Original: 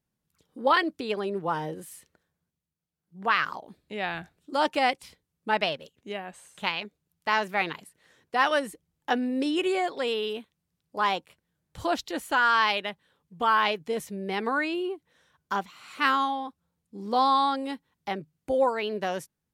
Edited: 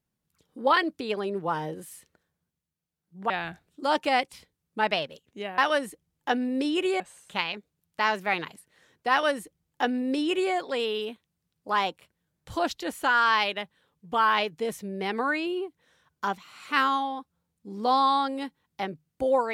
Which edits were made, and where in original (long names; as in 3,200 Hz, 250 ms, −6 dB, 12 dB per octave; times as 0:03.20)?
0:03.30–0:04.00: remove
0:08.39–0:09.81: duplicate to 0:06.28